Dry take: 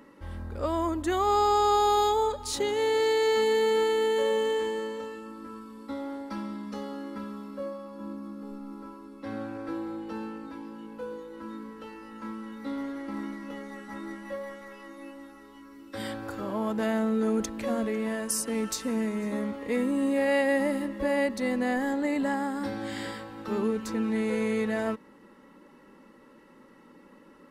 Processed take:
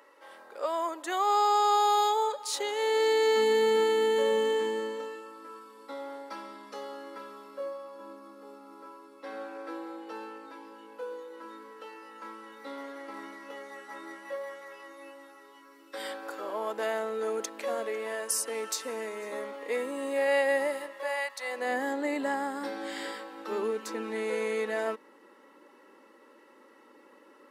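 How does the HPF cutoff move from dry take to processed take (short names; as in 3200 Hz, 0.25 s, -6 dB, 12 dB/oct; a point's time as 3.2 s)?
HPF 24 dB/oct
2.79 s 470 Hz
3.57 s 160 Hz
4.62 s 160 Hz
5.26 s 390 Hz
20.62 s 390 Hz
21.34 s 850 Hz
21.74 s 320 Hz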